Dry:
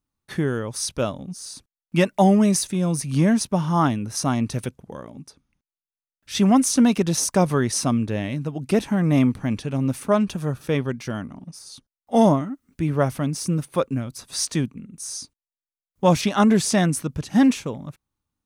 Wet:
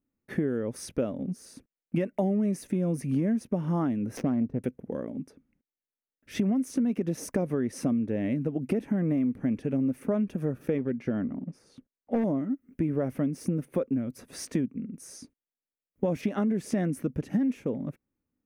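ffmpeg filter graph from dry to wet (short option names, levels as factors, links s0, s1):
-filter_complex "[0:a]asettb=1/sr,asplit=3[s0][s1][s2];[s0]atrim=end=4.174[s3];[s1]atrim=start=4.17:end=4.64,asetpts=PTS-STARTPTS,afade=t=in:d=0.004:c=qsin,afade=t=out:st=0.466:d=0.004:c=qsin,bass=f=250:g=1,treble=f=4000:g=10,adynamicsmooth=sensitivity=1:basefreq=530[s4];[s2]atrim=start=4.636[s5];[s3][s4]acrossfade=d=0.004:c1=hsin:c2=qsin[s6];[s6][s5]acrossfade=d=0.004:c1=qsin:c2=hsin,asettb=1/sr,asplit=3[s7][s8][s9];[s7]atrim=end=10.784[s10];[s8]atrim=start=10.78:end=12.24,asetpts=PTS-STARTPTS,afade=t=in:d=0.004:c=qsin,afade=t=out:st=1.456:d=0.004:c=qsin,aemphasis=mode=reproduction:type=50fm,asoftclip=type=hard:threshold=0.133[s11];[s9]atrim=start=12.236[s12];[s10][s11]acrossfade=d=0.004:c1=hsin:c2=qsin[s13];[s13][s12]acrossfade=d=0.004:c1=qsin:c2=hsin,equalizer=f=250:t=o:w=1:g=11,equalizer=f=500:t=o:w=1:g=9,equalizer=f=1000:t=o:w=1:g=-6,equalizer=f=2000:t=o:w=1:g=6,equalizer=f=4000:t=o:w=1:g=-11,equalizer=f=8000:t=o:w=1:g=-8,alimiter=limit=0.668:level=0:latency=1,acompressor=threshold=0.112:ratio=6,volume=0.531"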